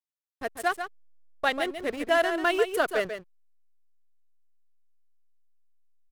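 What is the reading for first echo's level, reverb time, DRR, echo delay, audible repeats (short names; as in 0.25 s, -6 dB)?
-8.5 dB, none, none, 0.141 s, 1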